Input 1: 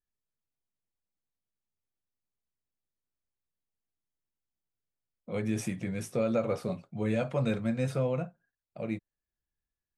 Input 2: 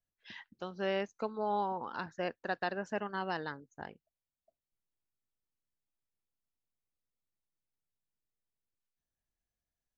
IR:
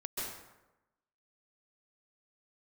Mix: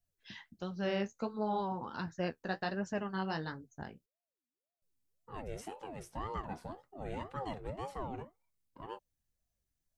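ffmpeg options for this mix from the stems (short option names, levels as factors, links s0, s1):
-filter_complex "[0:a]aeval=exprs='val(0)*sin(2*PI*470*n/s+470*0.5/1.9*sin(2*PI*1.9*n/s))':c=same,volume=0.376[s0];[1:a]bass=f=250:g=11,treble=f=4000:g=8,flanger=delay=9.4:depth=6.6:regen=-35:speed=1.4:shape=triangular,volume=1.12,asplit=3[s1][s2][s3];[s1]atrim=end=4.06,asetpts=PTS-STARTPTS,afade=t=out:st=4.056:d=0.004:c=hsin[s4];[s2]atrim=start=4.06:end=4.82,asetpts=PTS-STARTPTS,volume=0[s5];[s3]atrim=start=4.82,asetpts=PTS-STARTPTS,afade=t=in:d=0.004:c=hsin[s6];[s4][s5][s6]concat=n=3:v=0:a=1[s7];[s0][s7]amix=inputs=2:normalize=0"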